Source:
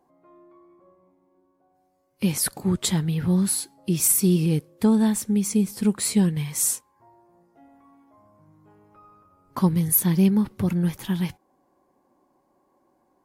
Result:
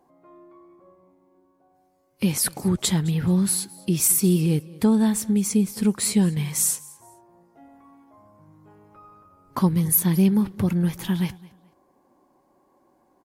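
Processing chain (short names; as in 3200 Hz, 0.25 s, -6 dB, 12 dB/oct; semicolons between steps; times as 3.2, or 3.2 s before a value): in parallel at -2.5 dB: compressor, threshold -27 dBFS, peak gain reduction 12.5 dB; on the sum: feedback echo 0.214 s, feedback 26%, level -22 dB; gain -1.5 dB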